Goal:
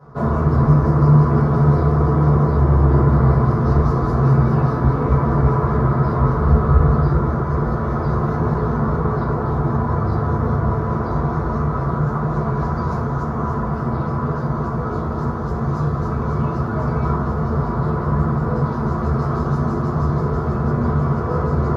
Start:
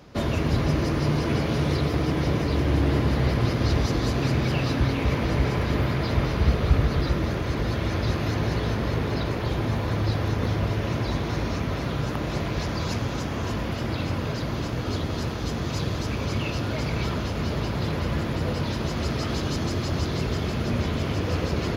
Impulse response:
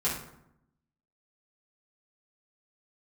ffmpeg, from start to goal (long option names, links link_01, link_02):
-filter_complex "[0:a]highshelf=frequency=1800:width_type=q:width=3:gain=-14[link_01];[1:a]atrim=start_sample=2205,atrim=end_sample=4410,asetrate=41895,aresample=44100[link_02];[link_01][link_02]afir=irnorm=-1:irlink=0,volume=-4.5dB"